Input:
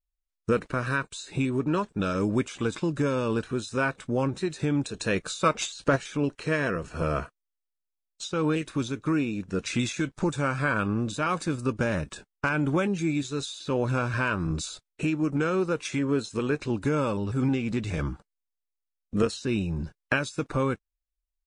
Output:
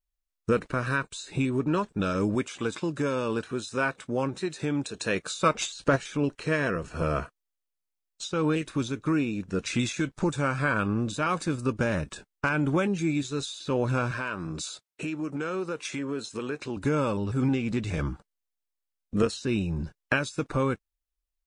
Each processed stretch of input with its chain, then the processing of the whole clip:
0:02.35–0:05.36: high-pass filter 61 Hz + low-shelf EQ 210 Hz −6.5 dB
0:14.11–0:16.77: high-pass filter 250 Hz 6 dB per octave + downward compressor 2 to 1, threshold −30 dBFS
whole clip: no processing

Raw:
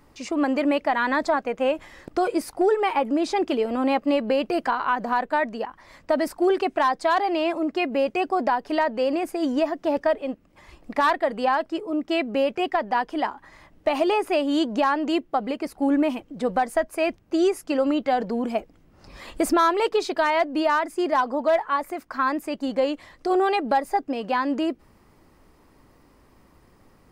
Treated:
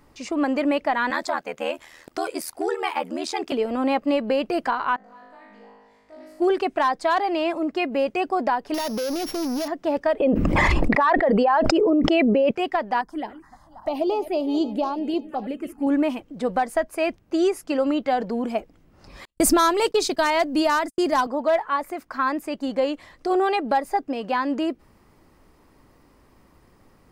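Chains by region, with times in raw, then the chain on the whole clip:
0:01.10–0:03.52: spectral tilt +2.5 dB per octave + ring modulation 40 Hz
0:04.96–0:06.40: downward compressor 2 to 1, threshold −34 dBFS + tuned comb filter 52 Hz, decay 1.3 s, mix 100% + highs frequency-modulated by the lows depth 0.11 ms
0:08.74–0:09.68: samples sorted by size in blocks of 8 samples + downward compressor 10 to 1, threshold −29 dBFS + leveller curve on the samples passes 3
0:10.20–0:12.51: spectral envelope exaggerated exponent 1.5 + envelope flattener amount 100%
0:13.01–0:15.87: feedback delay that plays each chunk backwards 266 ms, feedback 58%, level −14 dB + parametric band 2,500 Hz −7.5 dB 1.5 octaves + phaser swept by the level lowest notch 340 Hz, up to 1,800 Hz, full sweep at −19 dBFS
0:19.25–0:21.27: noise gate −35 dBFS, range −52 dB + bass and treble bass +10 dB, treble +12 dB
whole clip: no processing

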